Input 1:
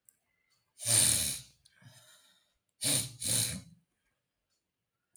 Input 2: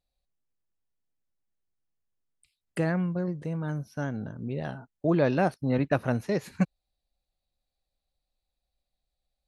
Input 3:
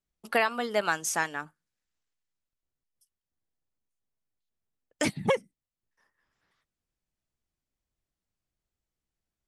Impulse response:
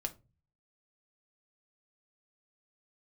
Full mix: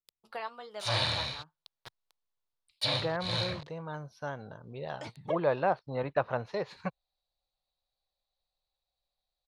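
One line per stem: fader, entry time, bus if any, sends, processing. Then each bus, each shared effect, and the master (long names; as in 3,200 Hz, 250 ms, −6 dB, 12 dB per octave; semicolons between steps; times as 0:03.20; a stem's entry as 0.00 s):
+1.0 dB, 0.00 s, no send, parametric band 10,000 Hz −5 dB 1.3 octaves; bit-depth reduction 8 bits, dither none
−9.0 dB, 0.25 s, no send, parametric band 100 Hz −4.5 dB 1.7 octaves
−19.0 dB, 0.00 s, no send, low-shelf EQ 360 Hz +10 dB; flanger 1.3 Hz, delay 5.3 ms, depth 4.6 ms, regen +57%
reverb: not used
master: treble cut that deepens with the level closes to 2,600 Hz, closed at −32 dBFS; graphic EQ with 10 bands 125 Hz +4 dB, 250 Hz −8 dB, 500 Hz +6 dB, 1,000 Hz +11 dB, 4,000 Hz +12 dB, 8,000 Hz −3 dB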